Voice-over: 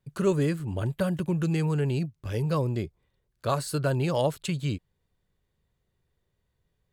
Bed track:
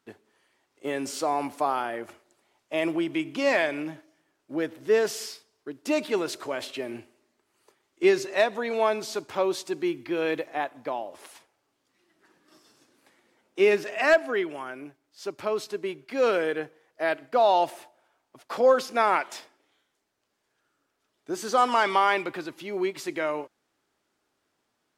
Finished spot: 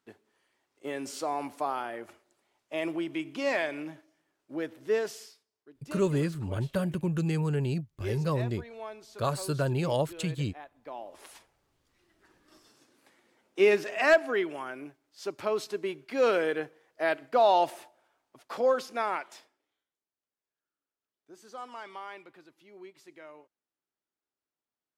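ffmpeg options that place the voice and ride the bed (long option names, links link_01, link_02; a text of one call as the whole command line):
ffmpeg -i stem1.wav -i stem2.wav -filter_complex "[0:a]adelay=5750,volume=-2.5dB[link_01];[1:a]volume=10.5dB,afade=type=out:start_time=4.93:duration=0.42:silence=0.251189,afade=type=in:start_time=10.79:duration=0.56:silence=0.158489,afade=type=out:start_time=17.7:duration=2.27:silence=0.112202[link_02];[link_01][link_02]amix=inputs=2:normalize=0" out.wav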